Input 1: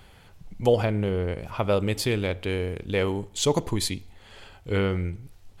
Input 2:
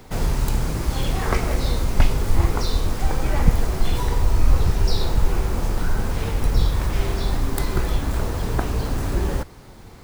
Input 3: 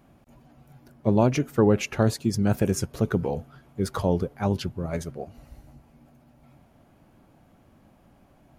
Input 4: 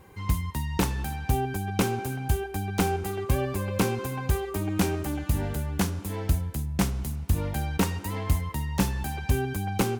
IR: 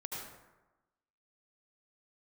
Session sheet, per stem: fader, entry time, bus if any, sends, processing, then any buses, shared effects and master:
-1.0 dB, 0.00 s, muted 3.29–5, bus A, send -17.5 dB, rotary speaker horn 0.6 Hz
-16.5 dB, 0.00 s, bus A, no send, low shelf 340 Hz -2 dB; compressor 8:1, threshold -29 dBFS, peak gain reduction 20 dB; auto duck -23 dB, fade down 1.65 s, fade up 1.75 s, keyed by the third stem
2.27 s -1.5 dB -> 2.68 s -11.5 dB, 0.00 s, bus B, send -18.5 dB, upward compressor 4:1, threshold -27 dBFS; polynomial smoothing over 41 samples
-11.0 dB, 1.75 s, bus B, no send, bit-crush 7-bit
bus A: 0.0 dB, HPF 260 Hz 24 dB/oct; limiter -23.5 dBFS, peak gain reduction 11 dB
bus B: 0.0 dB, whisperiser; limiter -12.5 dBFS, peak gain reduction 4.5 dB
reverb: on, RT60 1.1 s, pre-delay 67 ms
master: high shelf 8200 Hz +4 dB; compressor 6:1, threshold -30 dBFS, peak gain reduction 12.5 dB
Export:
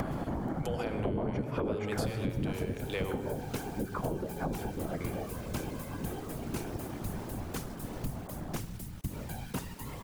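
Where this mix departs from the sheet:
stem 1: missing rotary speaker horn 0.6 Hz; stem 3 -1.5 dB -> +5.0 dB; reverb return +7.0 dB

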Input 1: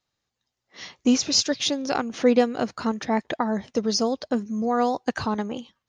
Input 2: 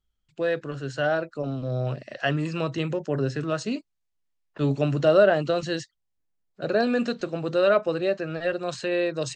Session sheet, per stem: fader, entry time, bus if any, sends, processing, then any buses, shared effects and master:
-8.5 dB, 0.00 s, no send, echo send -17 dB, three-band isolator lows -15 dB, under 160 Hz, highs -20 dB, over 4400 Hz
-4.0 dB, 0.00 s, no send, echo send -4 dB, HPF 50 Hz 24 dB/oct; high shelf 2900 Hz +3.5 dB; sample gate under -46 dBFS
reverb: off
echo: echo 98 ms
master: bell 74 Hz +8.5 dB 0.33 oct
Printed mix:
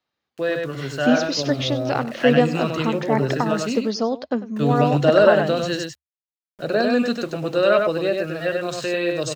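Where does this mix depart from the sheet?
stem 1 -8.5 dB -> +2.0 dB; stem 2 -4.0 dB -> +2.0 dB

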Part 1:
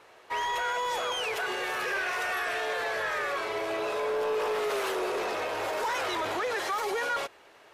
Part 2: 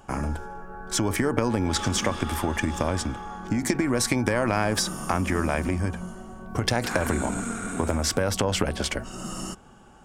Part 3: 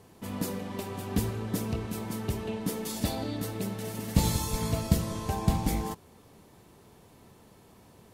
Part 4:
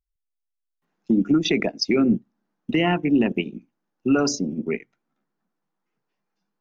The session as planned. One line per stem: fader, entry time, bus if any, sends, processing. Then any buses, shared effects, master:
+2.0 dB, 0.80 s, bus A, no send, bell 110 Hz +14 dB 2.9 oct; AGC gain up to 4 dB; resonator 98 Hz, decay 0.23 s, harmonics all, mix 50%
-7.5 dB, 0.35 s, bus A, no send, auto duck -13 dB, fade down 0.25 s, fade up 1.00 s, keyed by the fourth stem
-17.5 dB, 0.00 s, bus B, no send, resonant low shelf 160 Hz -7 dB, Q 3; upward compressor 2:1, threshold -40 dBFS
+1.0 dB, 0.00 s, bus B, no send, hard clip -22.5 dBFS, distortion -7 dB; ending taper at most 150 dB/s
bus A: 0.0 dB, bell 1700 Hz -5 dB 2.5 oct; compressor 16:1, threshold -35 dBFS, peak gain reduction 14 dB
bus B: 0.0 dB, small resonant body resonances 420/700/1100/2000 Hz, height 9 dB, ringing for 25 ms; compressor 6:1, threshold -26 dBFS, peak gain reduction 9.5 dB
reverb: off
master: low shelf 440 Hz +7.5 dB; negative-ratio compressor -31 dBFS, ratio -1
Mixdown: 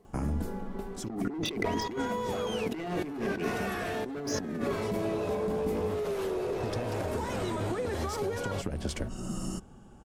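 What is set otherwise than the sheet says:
stem 1: entry 0.80 s -> 1.35 s; stem 2: entry 0.35 s -> 0.05 s; stem 3: missing upward compressor 2:1, threshold -40 dBFS

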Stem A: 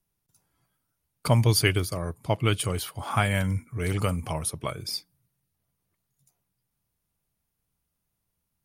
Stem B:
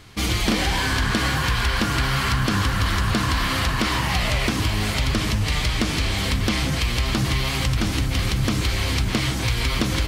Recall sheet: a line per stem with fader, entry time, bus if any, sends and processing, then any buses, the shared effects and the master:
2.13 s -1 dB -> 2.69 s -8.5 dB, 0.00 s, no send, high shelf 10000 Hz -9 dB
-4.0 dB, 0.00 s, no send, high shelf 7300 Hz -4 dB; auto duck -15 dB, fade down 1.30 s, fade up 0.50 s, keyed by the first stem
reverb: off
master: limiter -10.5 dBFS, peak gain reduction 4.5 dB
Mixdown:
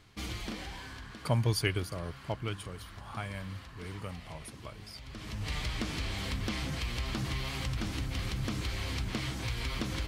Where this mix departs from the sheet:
stem A -1.0 dB -> -7.5 dB; stem B -4.0 dB -> -12.5 dB

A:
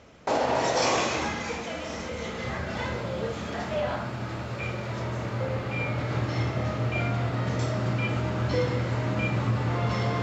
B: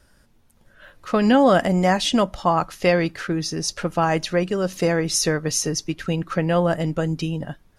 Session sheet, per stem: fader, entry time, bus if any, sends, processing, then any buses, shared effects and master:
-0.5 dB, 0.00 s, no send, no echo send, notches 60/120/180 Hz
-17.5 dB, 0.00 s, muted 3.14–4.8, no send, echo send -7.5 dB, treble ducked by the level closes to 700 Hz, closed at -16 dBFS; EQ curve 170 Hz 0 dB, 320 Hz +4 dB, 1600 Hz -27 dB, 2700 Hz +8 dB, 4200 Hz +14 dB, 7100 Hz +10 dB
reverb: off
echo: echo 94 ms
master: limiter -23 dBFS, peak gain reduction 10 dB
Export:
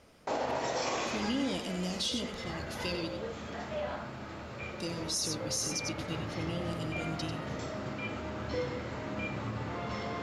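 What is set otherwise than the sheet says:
stem A -0.5 dB -> -7.5 dB; stem B: missing treble ducked by the level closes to 700 Hz, closed at -16 dBFS

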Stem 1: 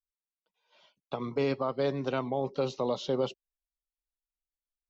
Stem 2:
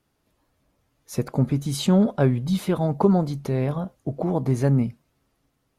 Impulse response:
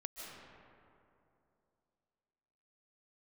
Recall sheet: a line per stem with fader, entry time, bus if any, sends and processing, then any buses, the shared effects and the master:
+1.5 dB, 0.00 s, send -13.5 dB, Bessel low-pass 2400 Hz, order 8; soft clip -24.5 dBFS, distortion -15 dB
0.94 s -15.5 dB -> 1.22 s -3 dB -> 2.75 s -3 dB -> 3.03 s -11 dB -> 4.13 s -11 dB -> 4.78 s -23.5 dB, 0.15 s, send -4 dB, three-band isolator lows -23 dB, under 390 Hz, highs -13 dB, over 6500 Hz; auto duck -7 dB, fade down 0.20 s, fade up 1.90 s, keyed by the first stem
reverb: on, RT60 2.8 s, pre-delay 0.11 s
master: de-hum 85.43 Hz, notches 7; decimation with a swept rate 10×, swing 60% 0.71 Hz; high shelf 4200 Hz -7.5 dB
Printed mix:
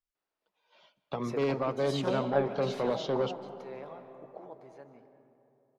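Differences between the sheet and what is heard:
stem 1: missing Bessel low-pass 2400 Hz, order 8; master: missing decimation with a swept rate 10×, swing 60% 0.71 Hz

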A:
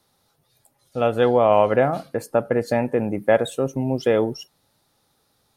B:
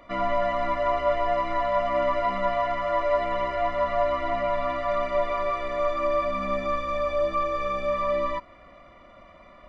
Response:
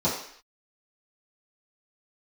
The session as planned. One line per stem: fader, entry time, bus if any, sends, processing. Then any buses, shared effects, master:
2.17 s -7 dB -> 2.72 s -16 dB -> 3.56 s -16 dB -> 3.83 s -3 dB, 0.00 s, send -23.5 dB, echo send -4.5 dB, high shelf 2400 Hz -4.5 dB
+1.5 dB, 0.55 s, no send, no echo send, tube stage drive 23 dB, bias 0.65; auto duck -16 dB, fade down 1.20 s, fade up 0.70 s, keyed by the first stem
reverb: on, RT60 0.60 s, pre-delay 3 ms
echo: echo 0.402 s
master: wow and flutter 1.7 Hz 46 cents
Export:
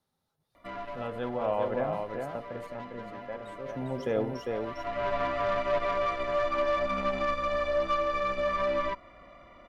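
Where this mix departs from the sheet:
stem A -7.0 dB -> -14.0 dB; master: missing wow and flutter 1.7 Hz 46 cents

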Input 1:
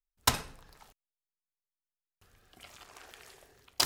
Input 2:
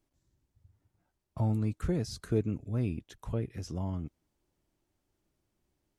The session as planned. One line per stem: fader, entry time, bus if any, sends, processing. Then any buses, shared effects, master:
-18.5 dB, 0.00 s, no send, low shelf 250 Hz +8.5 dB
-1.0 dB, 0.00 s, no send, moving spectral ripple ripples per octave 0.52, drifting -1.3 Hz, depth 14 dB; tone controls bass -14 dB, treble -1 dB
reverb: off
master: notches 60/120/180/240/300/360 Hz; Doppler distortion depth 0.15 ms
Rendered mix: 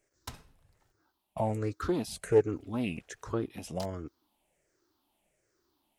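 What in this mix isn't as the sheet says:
stem 2 -1.0 dB -> +5.5 dB; master: missing notches 60/120/180/240/300/360 Hz

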